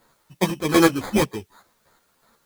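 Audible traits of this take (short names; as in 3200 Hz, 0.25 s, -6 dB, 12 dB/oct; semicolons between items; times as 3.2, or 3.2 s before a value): aliases and images of a low sample rate 2800 Hz, jitter 0%; chopped level 2.7 Hz, depth 60%, duty 35%; a quantiser's noise floor 12-bit, dither triangular; a shimmering, thickened sound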